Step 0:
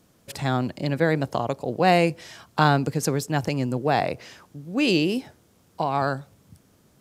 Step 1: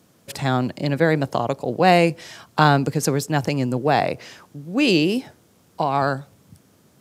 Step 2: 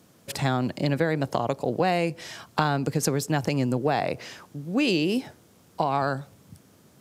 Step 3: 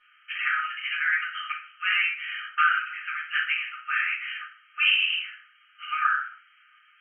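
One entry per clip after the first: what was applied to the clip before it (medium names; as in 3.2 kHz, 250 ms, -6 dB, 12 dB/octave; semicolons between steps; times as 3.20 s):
high-pass 88 Hz; trim +3.5 dB
compression 5:1, threshold -20 dBFS, peak gain reduction 10 dB
brick-wall FIR band-pass 1.2–3.2 kHz; simulated room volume 56 m³, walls mixed, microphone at 1.9 m; trim +1.5 dB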